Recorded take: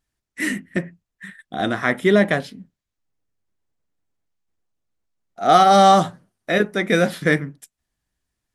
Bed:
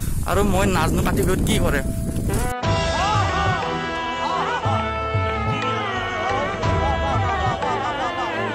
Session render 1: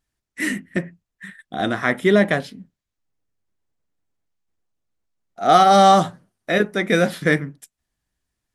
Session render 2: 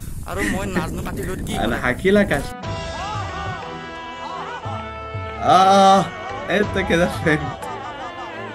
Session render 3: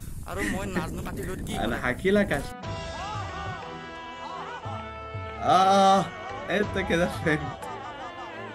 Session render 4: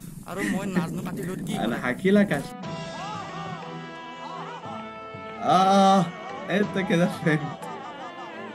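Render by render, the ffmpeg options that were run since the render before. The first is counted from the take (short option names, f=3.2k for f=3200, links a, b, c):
-af anull
-filter_complex "[1:a]volume=-7dB[a];[0:a][a]amix=inputs=2:normalize=0"
-af "volume=-7dB"
-af "lowshelf=f=120:t=q:w=3:g=-11,bandreject=f=1.5k:w=20"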